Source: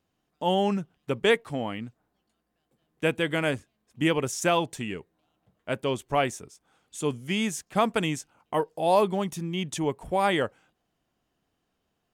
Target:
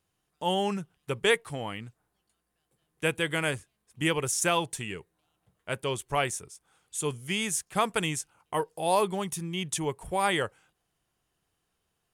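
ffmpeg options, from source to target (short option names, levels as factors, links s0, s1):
-af "equalizer=f=250:t=o:w=0.67:g=-10,equalizer=f=630:t=o:w=0.67:g=-5,equalizer=f=10000:t=o:w=0.67:g=10"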